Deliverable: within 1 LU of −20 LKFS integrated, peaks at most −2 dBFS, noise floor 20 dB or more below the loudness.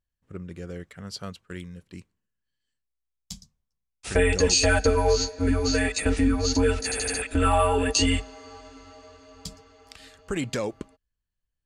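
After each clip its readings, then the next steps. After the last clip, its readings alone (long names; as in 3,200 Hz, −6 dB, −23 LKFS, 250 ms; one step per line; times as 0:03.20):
integrated loudness −23.5 LKFS; sample peak −8.5 dBFS; target loudness −20.0 LKFS
→ level +3.5 dB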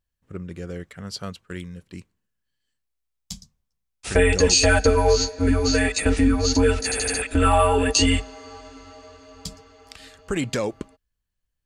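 integrated loudness −20.0 LKFS; sample peak −5.0 dBFS; background noise floor −79 dBFS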